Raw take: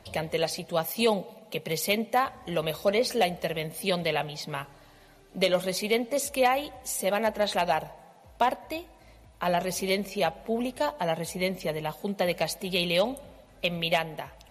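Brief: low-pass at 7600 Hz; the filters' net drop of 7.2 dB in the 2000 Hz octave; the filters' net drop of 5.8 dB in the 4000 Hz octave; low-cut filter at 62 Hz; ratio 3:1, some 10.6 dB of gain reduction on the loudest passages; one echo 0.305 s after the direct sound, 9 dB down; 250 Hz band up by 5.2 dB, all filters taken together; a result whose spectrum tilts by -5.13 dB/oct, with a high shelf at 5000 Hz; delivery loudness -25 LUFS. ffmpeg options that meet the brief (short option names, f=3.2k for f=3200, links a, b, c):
-af "highpass=62,lowpass=7.6k,equalizer=f=250:t=o:g=7,equalizer=f=2k:t=o:g=-8,equalizer=f=4k:t=o:g=-5.5,highshelf=f=5k:g=3,acompressor=threshold=-33dB:ratio=3,aecho=1:1:305:0.355,volume=10.5dB"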